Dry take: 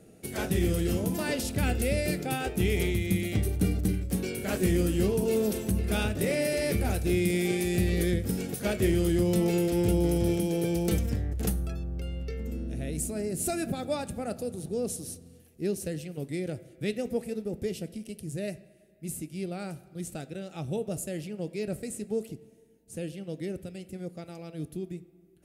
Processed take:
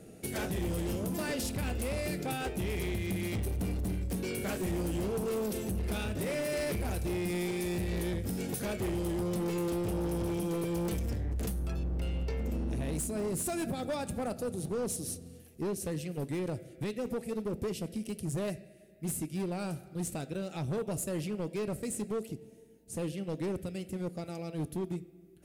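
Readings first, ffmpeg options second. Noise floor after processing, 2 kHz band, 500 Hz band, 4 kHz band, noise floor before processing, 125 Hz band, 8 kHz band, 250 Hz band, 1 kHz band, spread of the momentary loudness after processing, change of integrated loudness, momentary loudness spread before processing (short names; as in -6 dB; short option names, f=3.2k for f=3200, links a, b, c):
-54 dBFS, -5.0 dB, -4.5 dB, -4.5 dB, -57 dBFS, -5.0 dB, -3.0 dB, -5.0 dB, -2.0 dB, 5 LU, -5.0 dB, 13 LU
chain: -af "alimiter=level_in=1dB:limit=-24dB:level=0:latency=1:release=387,volume=-1dB,volume=32.5dB,asoftclip=hard,volume=-32.5dB,volume=3dB"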